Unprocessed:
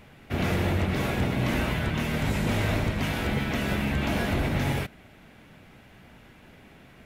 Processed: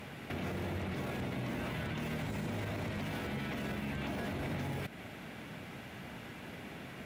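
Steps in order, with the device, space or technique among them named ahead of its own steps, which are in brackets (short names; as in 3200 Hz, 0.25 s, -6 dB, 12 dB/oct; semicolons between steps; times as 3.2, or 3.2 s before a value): podcast mastering chain (HPF 94 Hz 12 dB/oct; de-esser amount 100%; compressor, threshold -35 dBFS, peak gain reduction 11.5 dB; limiter -35.5 dBFS, peak gain reduction 10 dB; gain +6 dB; MP3 112 kbps 44100 Hz)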